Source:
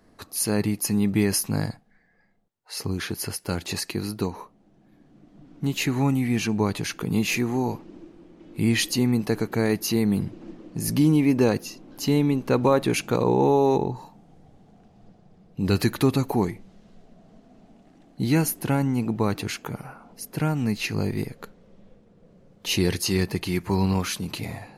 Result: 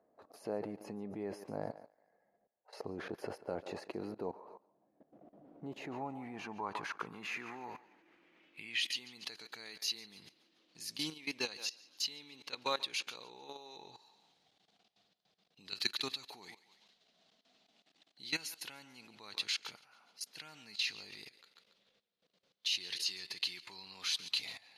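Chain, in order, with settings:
feedback echo with a high-pass in the loop 142 ms, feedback 38%, high-pass 370 Hz, level −14.5 dB
output level in coarse steps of 18 dB
band-pass filter sweep 600 Hz → 3,900 Hz, 0:05.72–0:09.37
level +7.5 dB

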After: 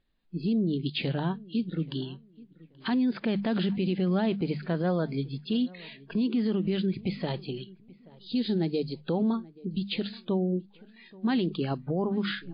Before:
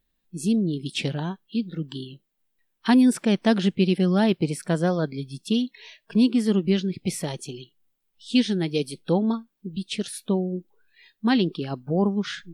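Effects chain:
gain on a spectral selection 0:08.06–0:09.01, 910–3,700 Hz −7 dB
high-shelf EQ 3,000 Hz −4.5 dB
mains-hum notches 50/100/150/200 Hz
brickwall limiter −21.5 dBFS, peak gain reduction 13 dB
on a send: feedback echo with a low-pass in the loop 830 ms, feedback 30%, low-pass 1,800 Hz, level −22 dB
on the sum: level +2 dB
MP3 32 kbit/s 11,025 Hz

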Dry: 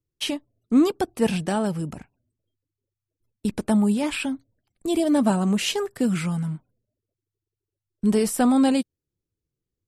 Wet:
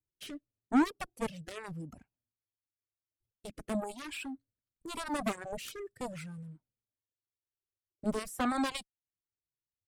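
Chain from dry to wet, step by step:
harmonic generator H 3 −18 dB, 6 −36 dB, 7 −13 dB, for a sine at −8 dBFS
reverb reduction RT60 1.6 s
rotating-speaker cabinet horn 0.9 Hz
level −8 dB

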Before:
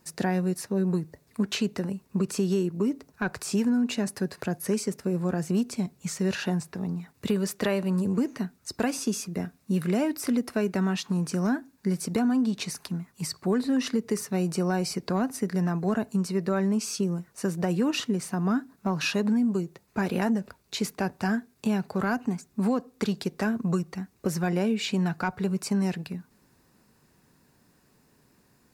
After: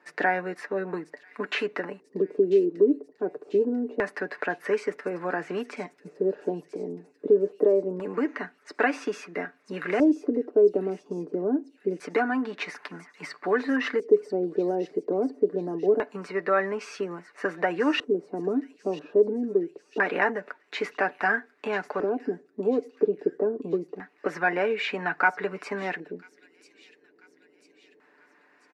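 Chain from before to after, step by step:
high-pass filter 310 Hz 24 dB per octave
high-shelf EQ 9,000 Hz +10.5 dB
comb filter 6.8 ms, depth 48%
auto-filter low-pass square 0.25 Hz 410–1,900 Hz
delay with a high-pass on its return 992 ms, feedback 53%, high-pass 5,100 Hz, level −8 dB
level +3 dB

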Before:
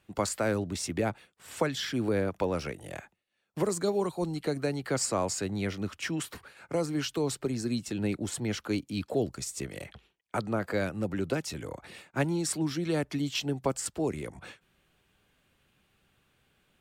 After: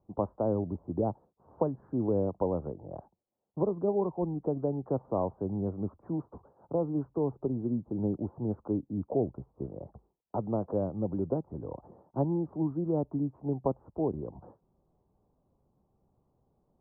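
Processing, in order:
Butterworth low-pass 1,000 Hz 48 dB per octave

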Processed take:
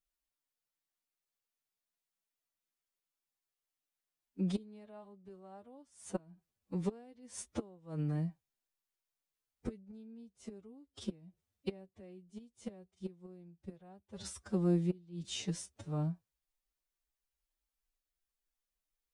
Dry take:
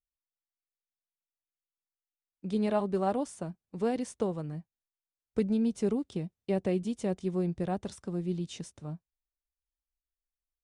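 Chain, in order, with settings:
gate with flip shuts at −25 dBFS, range −28 dB
phase-vocoder stretch with locked phases 1.8×
level +3.5 dB

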